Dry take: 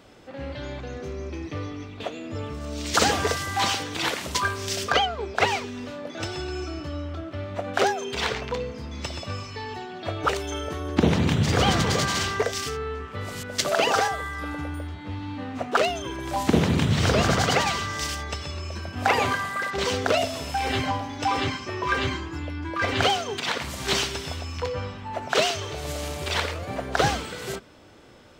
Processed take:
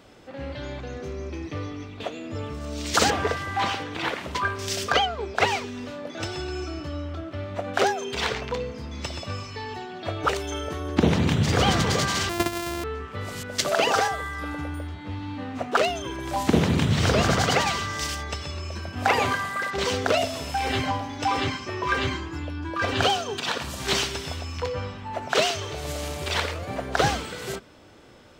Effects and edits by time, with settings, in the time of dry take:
0:03.10–0:04.59: bass and treble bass −1 dB, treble −14 dB
0:12.29–0:12.84: samples sorted by size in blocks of 128 samples
0:22.44–0:23.80: notch filter 2,100 Hz, Q 6.8

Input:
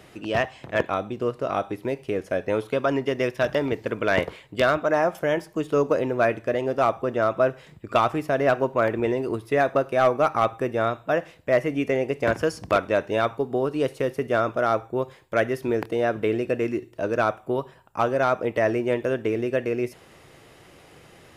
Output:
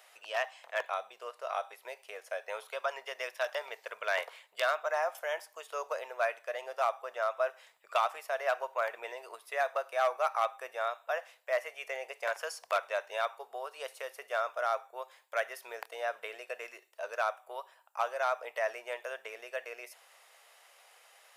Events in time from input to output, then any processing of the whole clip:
0:12.87–0:13.71: high-pass filter 160 Hz
whole clip: inverse Chebyshev high-pass filter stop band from 310 Hz, stop band 40 dB; high-shelf EQ 7,200 Hz +8 dB; level −7.5 dB

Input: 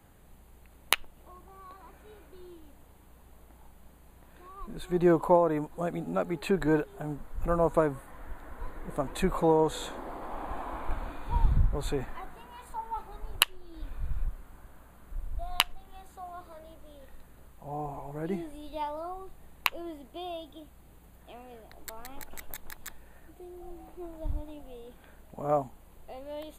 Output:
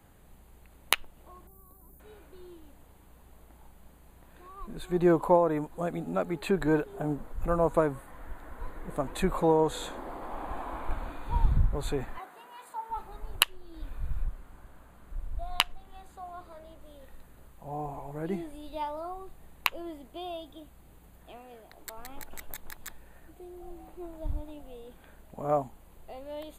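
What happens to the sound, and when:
0:01.47–0:02.00: drawn EQ curve 200 Hz 0 dB, 2,800 Hz −24 dB, 8,100 Hz 0 dB, 14,000 Hz +12 dB
0:06.86–0:07.33: parametric band 390 Hz +6.5 dB 2.5 octaves
0:12.18–0:12.90: high-pass filter 360 Hz
0:14.22–0:16.81: high-shelf EQ 11,000 Hz −7 dB
0:21.37–0:21.98: low-shelf EQ 180 Hz −6.5 dB

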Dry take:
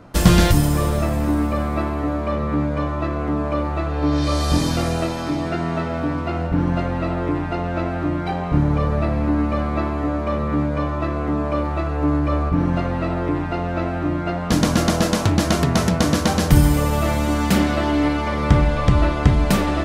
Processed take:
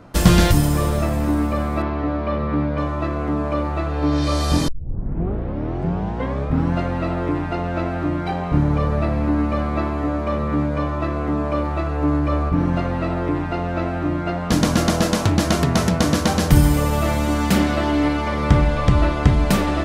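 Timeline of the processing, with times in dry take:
0:01.82–0:02.78: low-pass filter 4,900 Hz 24 dB per octave
0:04.68: tape start 2.06 s

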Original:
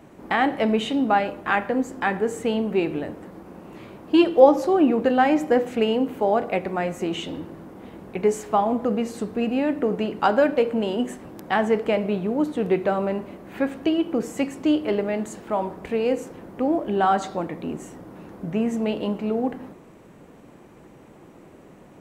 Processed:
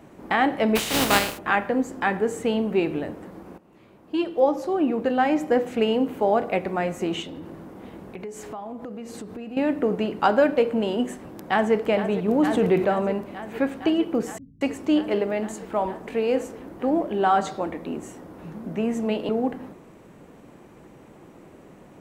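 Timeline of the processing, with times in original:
0:00.75–0:01.37: compressing power law on the bin magnitudes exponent 0.36
0:03.58–0:06.00: fade in, from −15.5 dB
0:07.22–0:09.57: downward compressor, threshold −33 dBFS
0:11.12–0:11.74: delay throw 460 ms, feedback 85%, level −11.5 dB
0:12.28–0:12.85: envelope flattener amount 50%
0:14.38–0:19.29: multiband delay without the direct sound lows, highs 230 ms, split 150 Hz

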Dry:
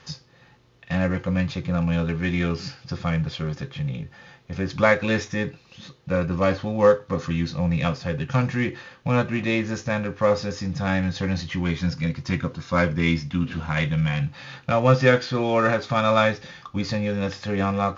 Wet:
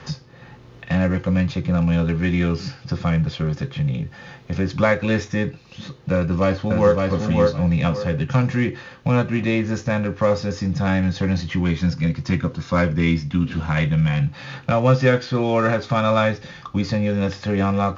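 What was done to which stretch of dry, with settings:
0:06.14–0:06.96: delay throw 560 ms, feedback 20%, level −2.5 dB
whole clip: low-shelf EQ 490 Hz +4.5 dB; multiband upward and downward compressor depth 40%

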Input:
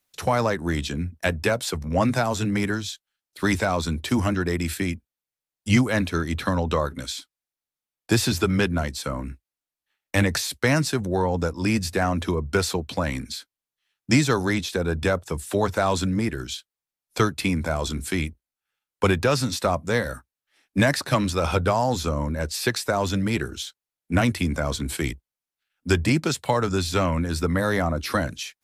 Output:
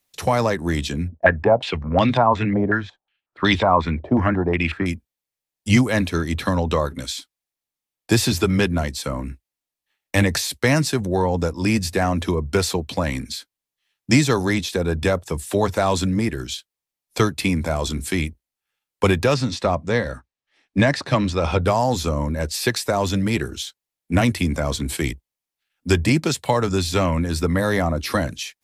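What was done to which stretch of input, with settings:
0:01.08–0:04.86: low-pass on a step sequencer 5.5 Hz 640–3,400 Hz
0:19.34–0:21.65: high-frequency loss of the air 90 metres
whole clip: parametric band 1,300 Hz −3 dB 0.38 octaves; notch filter 1,500 Hz, Q 18; level +3 dB

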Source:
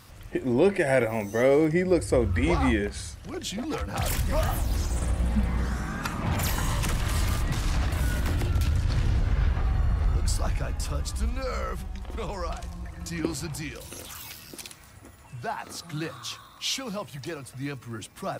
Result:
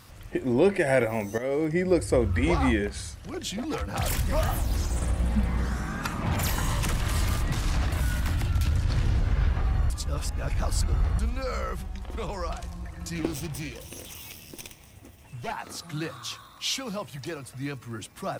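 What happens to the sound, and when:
0:01.38–0:01.88: fade in linear, from −13.5 dB
0:08.01–0:08.66: parametric band 420 Hz −10 dB 0.81 octaves
0:09.90–0:11.19: reverse
0:13.15–0:15.52: lower of the sound and its delayed copy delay 0.33 ms

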